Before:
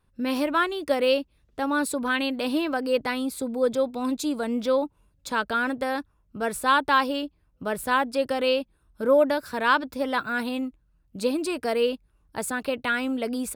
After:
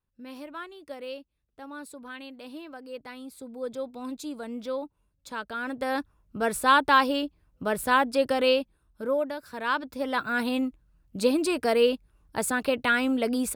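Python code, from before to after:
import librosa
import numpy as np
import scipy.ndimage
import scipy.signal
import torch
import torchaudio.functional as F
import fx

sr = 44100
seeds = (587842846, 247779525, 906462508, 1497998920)

y = fx.gain(x, sr, db=fx.line((2.91, -16.0), (3.9, -9.0), (5.55, -9.0), (5.99, 1.0), (8.51, 1.0), (9.33, -10.0), (10.54, 2.0)))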